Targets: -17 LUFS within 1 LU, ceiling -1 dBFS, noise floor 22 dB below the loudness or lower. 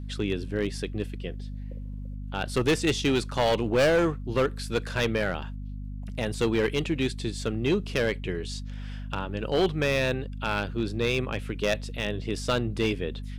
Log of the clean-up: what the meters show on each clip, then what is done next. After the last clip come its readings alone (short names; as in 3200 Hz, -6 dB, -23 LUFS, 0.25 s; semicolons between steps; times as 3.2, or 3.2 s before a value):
clipped 1.6%; flat tops at -18.0 dBFS; hum 50 Hz; harmonics up to 250 Hz; hum level -34 dBFS; loudness -28.0 LUFS; peak -18.0 dBFS; loudness target -17.0 LUFS
-> clip repair -18 dBFS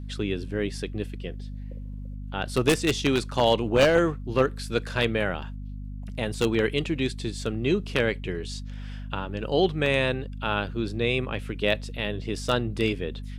clipped 0.0%; hum 50 Hz; harmonics up to 250 Hz; hum level -33 dBFS
-> de-hum 50 Hz, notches 5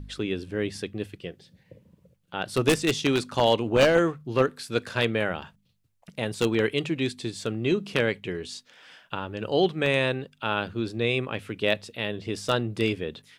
hum none; loudness -26.5 LUFS; peak -8.5 dBFS; loudness target -17.0 LUFS
-> gain +9.5 dB; limiter -1 dBFS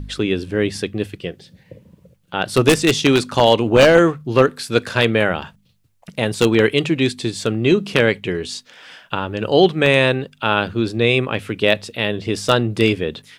loudness -17.5 LUFS; peak -1.0 dBFS; noise floor -57 dBFS